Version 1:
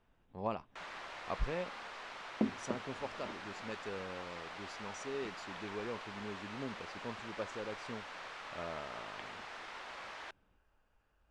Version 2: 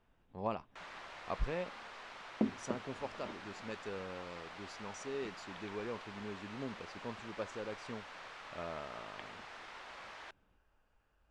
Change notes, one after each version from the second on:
first sound -3.0 dB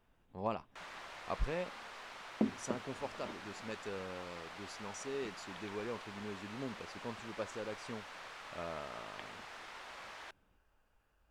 master: remove distance through air 52 m

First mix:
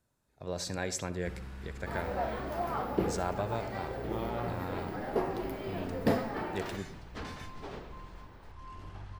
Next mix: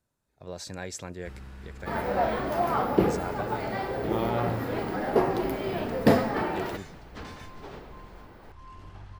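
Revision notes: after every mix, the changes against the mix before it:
speech: send off; second sound +8.0 dB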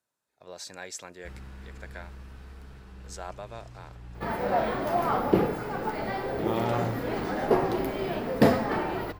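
speech: add high-pass 700 Hz 6 dB/octave; second sound: entry +2.35 s

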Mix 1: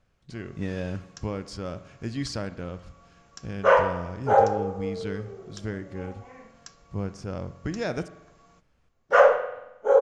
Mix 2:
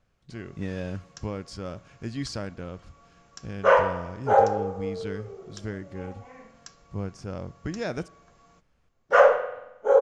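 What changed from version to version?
speech: send -10.0 dB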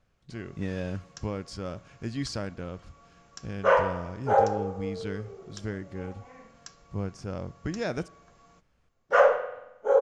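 second sound -3.0 dB

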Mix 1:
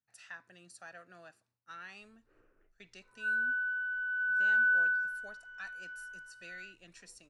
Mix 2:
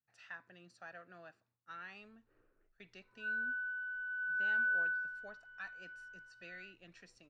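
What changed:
background -5.0 dB; master: add distance through air 170 m

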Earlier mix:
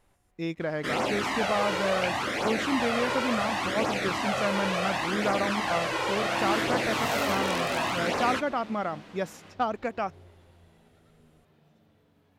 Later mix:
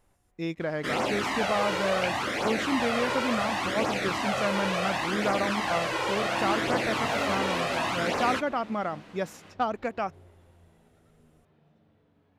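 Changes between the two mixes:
second sound: add low-pass 2.4 kHz 6 dB/octave; reverb: off

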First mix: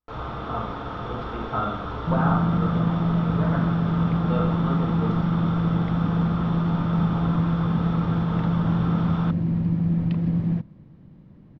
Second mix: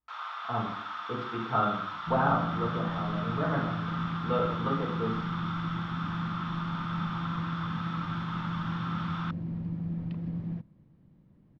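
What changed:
first sound: add inverse Chebyshev high-pass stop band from 180 Hz, stop band 80 dB; second sound -11.5 dB

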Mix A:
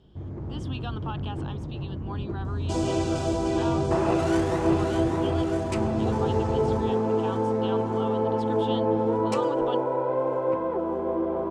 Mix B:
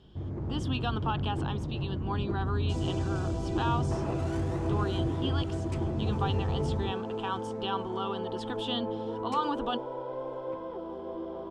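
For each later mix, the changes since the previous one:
speech +4.5 dB; second sound -11.0 dB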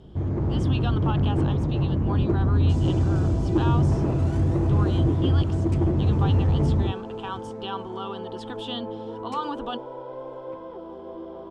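first sound +10.0 dB

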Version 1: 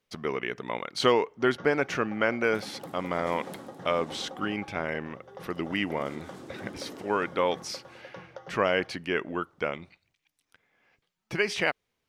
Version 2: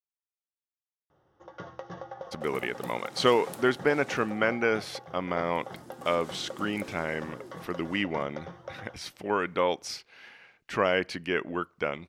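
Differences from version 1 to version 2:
speech: entry +2.20 s; first sound +3.0 dB; second sound: add tilt EQ +2 dB/octave

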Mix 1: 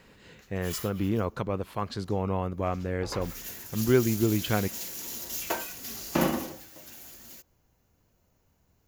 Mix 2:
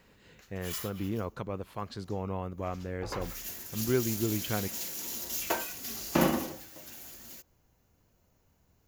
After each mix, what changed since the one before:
speech -6.0 dB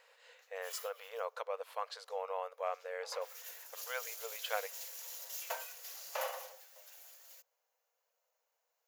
background -9.0 dB; master: add brick-wall FIR high-pass 450 Hz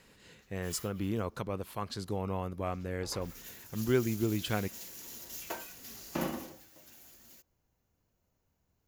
speech: remove low-pass 3 kHz 6 dB/octave; master: remove brick-wall FIR high-pass 450 Hz

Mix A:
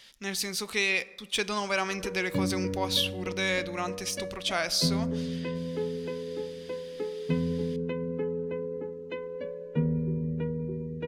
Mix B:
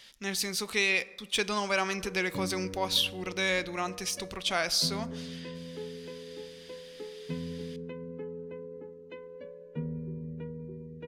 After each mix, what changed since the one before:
background -8.5 dB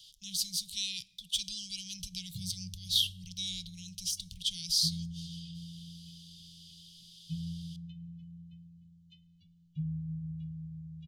background: send +8.5 dB; master: add Chebyshev band-stop 170–3100 Hz, order 5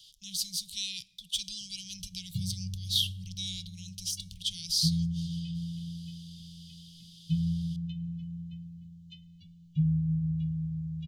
background +9.5 dB

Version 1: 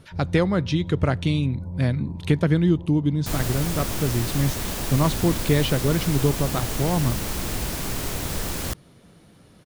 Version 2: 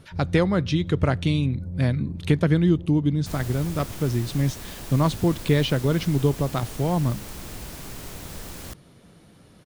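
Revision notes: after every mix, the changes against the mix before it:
first sound: remove resonant low-pass 970 Hz, resonance Q 7.5; second sound -9.5 dB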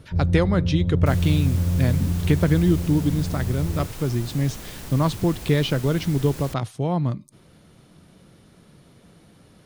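first sound +11.5 dB; second sound: entry -2.20 s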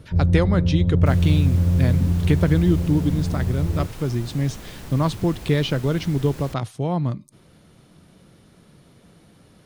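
first sound +3.5 dB; second sound: add treble shelf 4.6 kHz -6.5 dB

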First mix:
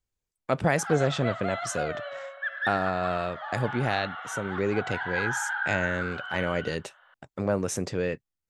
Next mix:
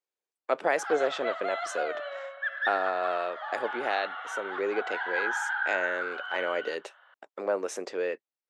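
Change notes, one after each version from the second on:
speech: add low-pass 3.1 kHz 6 dB/octave; master: add high-pass 360 Hz 24 dB/octave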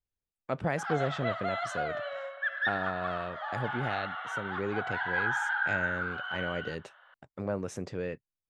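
speech -6.5 dB; master: remove high-pass 360 Hz 24 dB/octave

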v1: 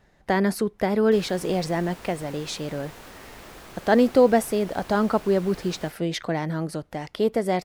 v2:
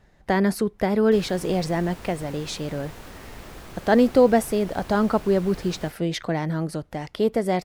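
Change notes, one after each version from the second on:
speech: add bass shelf 140 Hz +5.5 dB; background: add bass shelf 210 Hz +8.5 dB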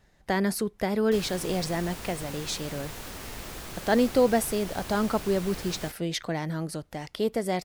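speech -5.5 dB; master: add treble shelf 3 kHz +8.5 dB

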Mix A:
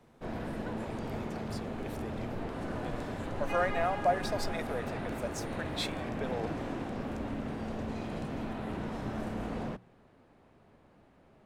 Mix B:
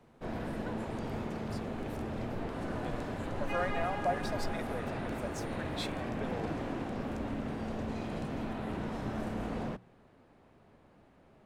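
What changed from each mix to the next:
speech -4.5 dB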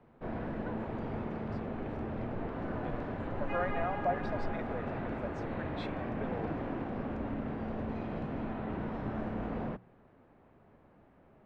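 master: add low-pass 2.2 kHz 12 dB/octave

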